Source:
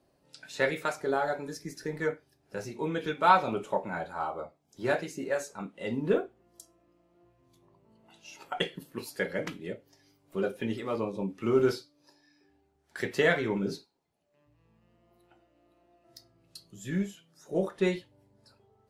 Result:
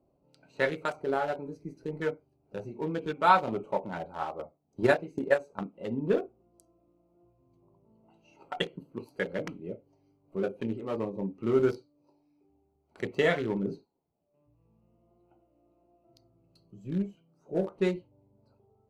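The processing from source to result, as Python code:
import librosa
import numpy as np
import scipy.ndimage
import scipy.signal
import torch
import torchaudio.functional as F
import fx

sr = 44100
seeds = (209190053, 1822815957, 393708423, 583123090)

y = fx.transient(x, sr, attack_db=9, sustain_db=-2, at=(4.21, 5.64))
y = fx.notch(y, sr, hz=1600.0, q=6.5, at=(11.71, 13.35))
y = fx.wiener(y, sr, points=25)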